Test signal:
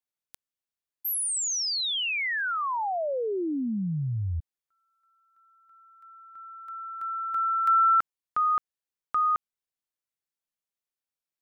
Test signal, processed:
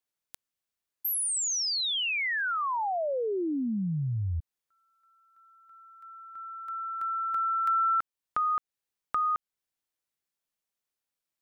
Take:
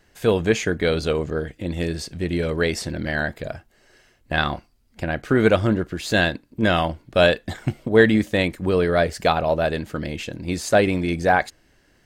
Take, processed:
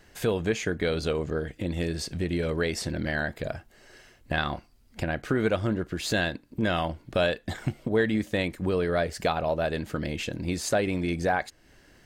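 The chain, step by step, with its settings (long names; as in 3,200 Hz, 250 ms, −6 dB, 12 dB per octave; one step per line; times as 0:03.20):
downward compressor 2 to 1, threshold −34 dBFS
level +3 dB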